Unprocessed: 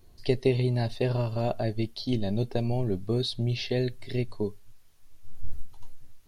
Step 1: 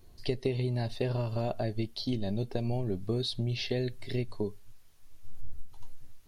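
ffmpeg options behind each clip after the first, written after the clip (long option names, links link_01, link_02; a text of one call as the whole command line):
ffmpeg -i in.wav -af "acompressor=threshold=-28dB:ratio=3" out.wav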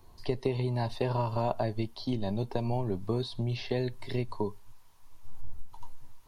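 ffmpeg -i in.wav -filter_complex "[0:a]equalizer=frequency=960:width=2.7:gain=14.5,acrossover=split=160|1800[link_01][link_02][link_03];[link_03]alimiter=level_in=9.5dB:limit=-24dB:level=0:latency=1:release=99,volume=-9.5dB[link_04];[link_01][link_02][link_04]amix=inputs=3:normalize=0" out.wav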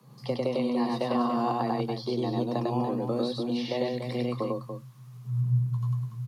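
ffmpeg -i in.wav -af "afreqshift=120,aecho=1:1:99.13|288.6:0.891|0.398" out.wav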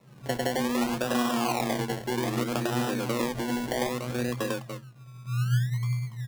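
ffmpeg -i in.wav -af "acrusher=samples=28:mix=1:aa=0.000001:lfo=1:lforange=16.8:lforate=0.63" out.wav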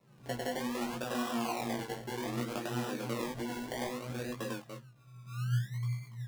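ffmpeg -i in.wav -af "flanger=delay=17:depth=2.7:speed=2.9,volume=-5dB" out.wav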